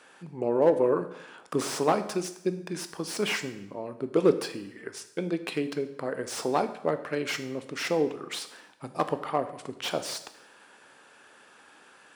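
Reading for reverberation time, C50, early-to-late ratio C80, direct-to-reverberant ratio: 0.80 s, 12.5 dB, 15.0 dB, 9.5 dB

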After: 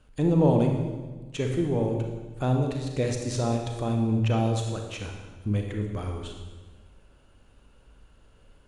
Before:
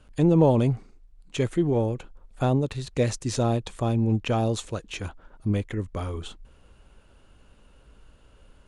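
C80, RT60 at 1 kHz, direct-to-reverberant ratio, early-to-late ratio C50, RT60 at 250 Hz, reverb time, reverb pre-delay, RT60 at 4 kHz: 6.0 dB, 1.2 s, 2.5 dB, 4.0 dB, 1.7 s, 1.4 s, 32 ms, 1.2 s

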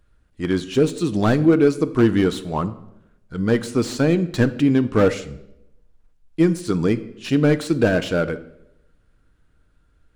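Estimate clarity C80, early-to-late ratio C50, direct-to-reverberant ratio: 18.5 dB, 16.0 dB, 10.0 dB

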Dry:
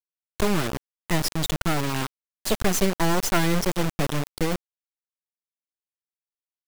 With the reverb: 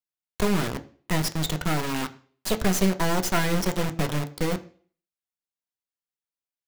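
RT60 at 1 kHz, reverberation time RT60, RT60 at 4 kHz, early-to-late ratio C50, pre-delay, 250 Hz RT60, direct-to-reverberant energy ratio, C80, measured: 0.40 s, 0.45 s, 0.45 s, 17.0 dB, 3 ms, 0.45 s, 7.0 dB, 20.0 dB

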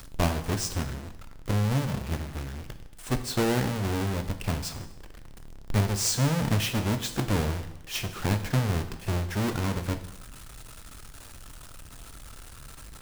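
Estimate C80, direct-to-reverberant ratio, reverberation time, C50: 13.5 dB, 8.5 dB, 0.95 s, 11.5 dB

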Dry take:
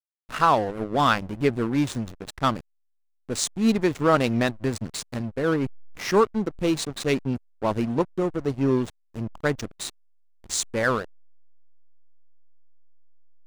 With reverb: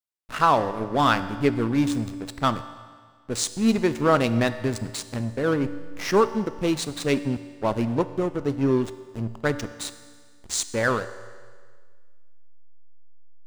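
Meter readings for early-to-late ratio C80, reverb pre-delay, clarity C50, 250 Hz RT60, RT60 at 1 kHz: 14.0 dB, 3 ms, 13.0 dB, 1.7 s, 1.7 s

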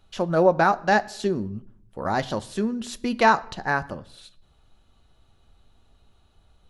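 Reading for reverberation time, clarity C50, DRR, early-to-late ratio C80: 0.75 s, 21.0 dB, 11.5 dB, 23.0 dB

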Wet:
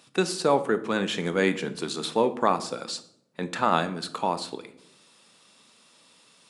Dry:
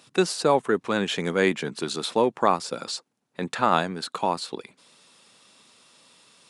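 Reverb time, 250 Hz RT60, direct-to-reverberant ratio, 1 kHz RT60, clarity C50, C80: 0.75 s, 1.0 s, 10.0 dB, 0.60 s, 14.0 dB, 18.0 dB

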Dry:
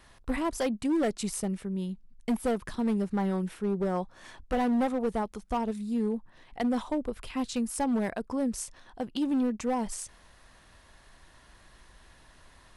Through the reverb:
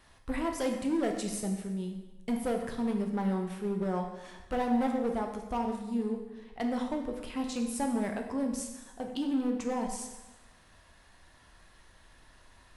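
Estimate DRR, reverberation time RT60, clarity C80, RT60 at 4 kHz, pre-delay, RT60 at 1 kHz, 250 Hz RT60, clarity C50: 2.5 dB, 1.1 s, 8.0 dB, 1.0 s, 5 ms, 1.1 s, 1.1 s, 6.0 dB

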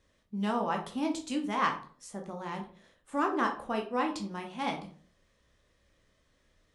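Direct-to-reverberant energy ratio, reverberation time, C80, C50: 2.0 dB, 0.45 s, 15.0 dB, 10.0 dB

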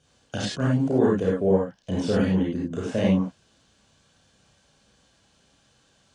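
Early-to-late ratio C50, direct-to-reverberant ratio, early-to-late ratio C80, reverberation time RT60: −1.5 dB, −5.5 dB, 4.0 dB, non-exponential decay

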